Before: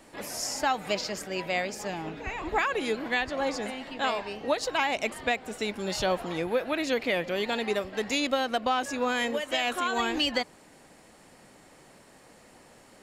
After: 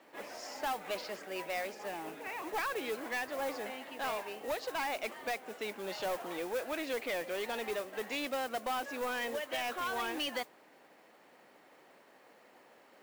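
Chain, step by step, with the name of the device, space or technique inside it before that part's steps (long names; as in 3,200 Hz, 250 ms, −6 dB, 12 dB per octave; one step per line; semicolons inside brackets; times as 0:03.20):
carbon microphone (band-pass filter 340–3,200 Hz; soft clipping −26 dBFS, distortion −11 dB; noise that follows the level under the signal 15 dB)
level −4 dB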